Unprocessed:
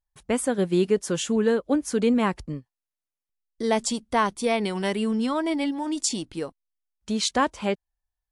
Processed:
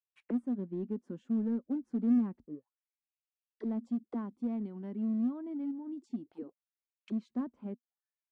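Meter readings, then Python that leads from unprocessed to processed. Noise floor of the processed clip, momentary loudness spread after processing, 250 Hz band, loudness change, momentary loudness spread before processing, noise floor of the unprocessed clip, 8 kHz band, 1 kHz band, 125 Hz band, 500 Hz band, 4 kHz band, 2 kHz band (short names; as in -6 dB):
under -85 dBFS, 15 LU, -6.5 dB, -10.5 dB, 10 LU, under -85 dBFS, under -40 dB, -25.0 dB, under -10 dB, -20.0 dB, under -35 dB, under -30 dB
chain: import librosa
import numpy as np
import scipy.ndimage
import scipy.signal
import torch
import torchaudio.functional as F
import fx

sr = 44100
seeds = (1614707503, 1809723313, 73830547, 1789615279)

p1 = fx.auto_wah(x, sr, base_hz=240.0, top_hz=2800.0, q=6.6, full_db=-25.5, direction='down')
p2 = fx.peak_eq(p1, sr, hz=1300.0, db=5.0, octaves=1.4)
p3 = np.clip(10.0 ** (31.5 / 20.0) * p2, -1.0, 1.0) / 10.0 ** (31.5 / 20.0)
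p4 = p2 + (p3 * 10.0 ** (-9.0 / 20.0))
y = p4 * 10.0 ** (-4.5 / 20.0)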